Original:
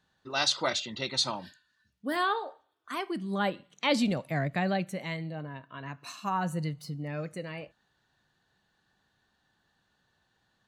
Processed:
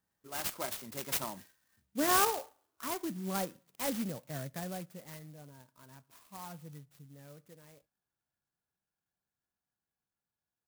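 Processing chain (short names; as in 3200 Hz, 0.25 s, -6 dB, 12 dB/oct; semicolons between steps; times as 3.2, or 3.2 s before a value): Doppler pass-by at 2.21, 16 m/s, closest 8.7 m; clock jitter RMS 0.1 ms; gain +1.5 dB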